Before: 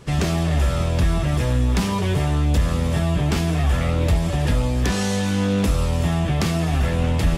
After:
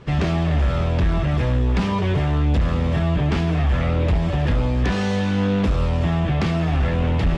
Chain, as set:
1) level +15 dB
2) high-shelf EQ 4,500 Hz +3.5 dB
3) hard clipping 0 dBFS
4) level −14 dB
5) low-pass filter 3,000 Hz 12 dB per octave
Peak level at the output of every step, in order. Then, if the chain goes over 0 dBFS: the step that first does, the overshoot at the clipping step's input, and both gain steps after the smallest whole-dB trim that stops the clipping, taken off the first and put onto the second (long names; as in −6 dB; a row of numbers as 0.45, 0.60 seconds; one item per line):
+6.0, +6.0, 0.0, −14.0, −13.5 dBFS
step 1, 6.0 dB
step 1 +9 dB, step 4 −8 dB